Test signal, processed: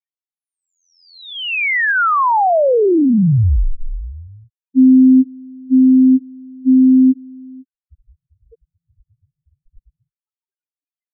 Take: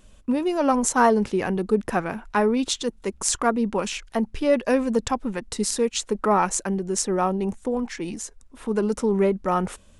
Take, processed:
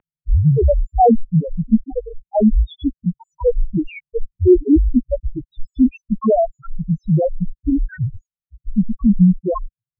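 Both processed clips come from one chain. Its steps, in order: in parallel at +3 dB: gain riding within 4 dB 2 s; on the sum: Chebyshev shaper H 5 -39 dB, 8 -22 dB, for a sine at 6 dBFS; loudest bins only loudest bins 1; mistuned SSB -210 Hz 230–3000 Hz; trim +7 dB

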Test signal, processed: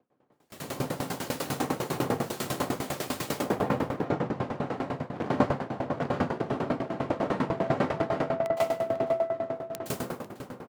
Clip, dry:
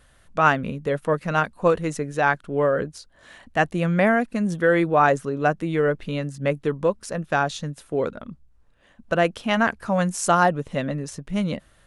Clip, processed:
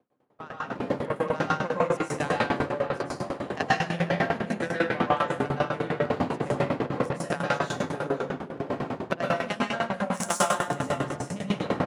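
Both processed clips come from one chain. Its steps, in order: wind noise 550 Hz -24 dBFS; compression 5:1, threshold -32 dBFS; reverb removal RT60 1.7 s; level rider gain up to 16 dB; Chebyshev shaper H 2 -25 dB, 3 -12 dB, 7 -45 dB, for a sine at -3.5 dBFS; high-pass 110 Hz 24 dB/octave; echo from a far wall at 85 m, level -8 dB; plate-style reverb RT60 1 s, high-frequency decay 0.95×, pre-delay 105 ms, DRR -7.5 dB; gate with hold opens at -28 dBFS; sawtooth tremolo in dB decaying 10 Hz, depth 19 dB

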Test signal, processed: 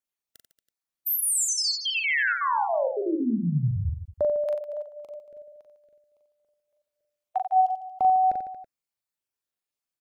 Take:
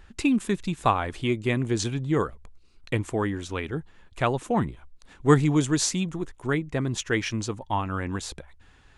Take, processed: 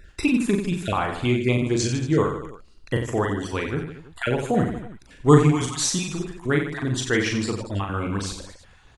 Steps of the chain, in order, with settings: random holes in the spectrogram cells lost 24%; reverse bouncing-ball echo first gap 40 ms, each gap 1.25×, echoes 5; trim +2.5 dB

